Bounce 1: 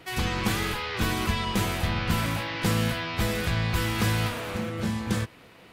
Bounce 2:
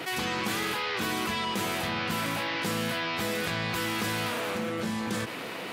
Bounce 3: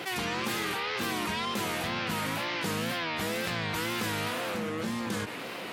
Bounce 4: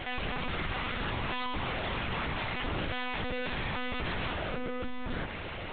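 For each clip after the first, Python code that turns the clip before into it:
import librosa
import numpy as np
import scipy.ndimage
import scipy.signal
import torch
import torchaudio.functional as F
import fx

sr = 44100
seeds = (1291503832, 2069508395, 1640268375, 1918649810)

y1 = scipy.signal.sosfilt(scipy.signal.butter(2, 210.0, 'highpass', fs=sr, output='sos'), x)
y1 = fx.env_flatten(y1, sr, amount_pct=70)
y1 = y1 * librosa.db_to_amplitude(-4.0)
y2 = fx.wow_flutter(y1, sr, seeds[0], rate_hz=2.1, depth_cents=110.0)
y2 = y2 * librosa.db_to_amplitude(-1.5)
y3 = 10.0 ** (-24.0 / 20.0) * np.tanh(y2 / 10.0 ** (-24.0 / 20.0))
y3 = fx.lpc_monotone(y3, sr, seeds[1], pitch_hz=250.0, order=10)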